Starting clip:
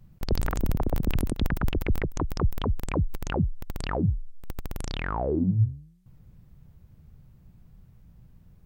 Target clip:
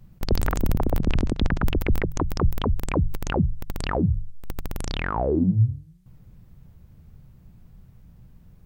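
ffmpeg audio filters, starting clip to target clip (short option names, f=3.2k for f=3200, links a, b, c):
-filter_complex "[0:a]asplit=3[a][b][c];[a]afade=t=out:st=0.97:d=0.02[d];[b]lowpass=f=6.6k:w=0.5412,lowpass=f=6.6k:w=1.3066,afade=t=in:st=0.97:d=0.02,afade=t=out:st=1.59:d=0.02[e];[c]afade=t=in:st=1.59:d=0.02[f];[d][e][f]amix=inputs=3:normalize=0,bandreject=f=50:t=h:w=6,bandreject=f=100:t=h:w=6,bandreject=f=150:t=h:w=6,volume=4dB"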